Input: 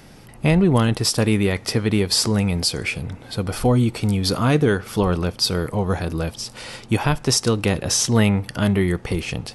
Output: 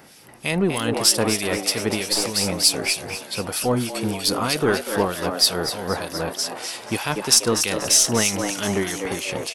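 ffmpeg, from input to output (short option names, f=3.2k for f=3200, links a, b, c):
-filter_complex "[0:a]highpass=f=400:p=1,highshelf=f=8.7k:g=9.5,asplit=9[a][b][c][d][e][f][g][h][i];[b]adelay=242,afreqshift=92,volume=-6.5dB[j];[c]adelay=484,afreqshift=184,volume=-10.8dB[k];[d]adelay=726,afreqshift=276,volume=-15.1dB[l];[e]adelay=968,afreqshift=368,volume=-19.4dB[m];[f]adelay=1210,afreqshift=460,volume=-23.7dB[n];[g]adelay=1452,afreqshift=552,volume=-28dB[o];[h]adelay=1694,afreqshift=644,volume=-32.3dB[p];[i]adelay=1936,afreqshift=736,volume=-36.6dB[q];[a][j][k][l][m][n][o][p][q]amix=inputs=9:normalize=0,asplit=2[r][s];[s]aeval=exprs='clip(val(0),-1,0.0596)':c=same,volume=-8dB[t];[r][t]amix=inputs=2:normalize=0,acrossover=split=2000[u][v];[u]aeval=exprs='val(0)*(1-0.7/2+0.7/2*cos(2*PI*3.2*n/s))':c=same[w];[v]aeval=exprs='val(0)*(1-0.7/2-0.7/2*cos(2*PI*3.2*n/s))':c=same[x];[w][x]amix=inputs=2:normalize=0"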